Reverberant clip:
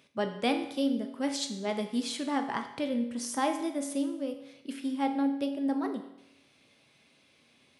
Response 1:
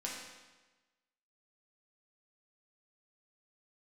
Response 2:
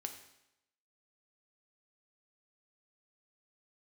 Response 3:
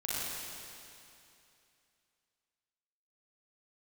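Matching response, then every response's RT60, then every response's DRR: 2; 1.2 s, 0.85 s, 2.7 s; -4.5 dB, 5.0 dB, -8.5 dB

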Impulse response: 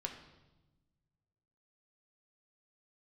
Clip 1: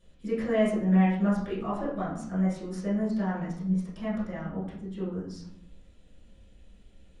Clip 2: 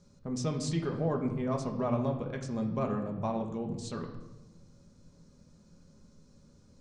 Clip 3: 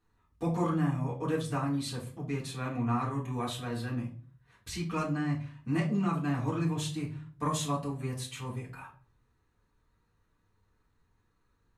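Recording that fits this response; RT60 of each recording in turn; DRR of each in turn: 2; 0.70 s, 1.1 s, 0.45 s; -10.0 dB, 2.0 dB, -6.0 dB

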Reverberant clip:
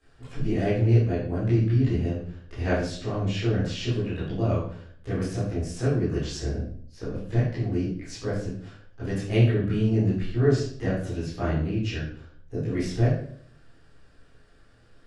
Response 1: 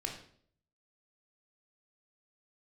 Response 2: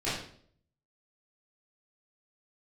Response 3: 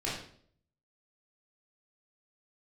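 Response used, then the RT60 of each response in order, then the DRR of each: 2; 0.60 s, 0.55 s, 0.55 s; 1.0 dB, -13.0 dB, -8.0 dB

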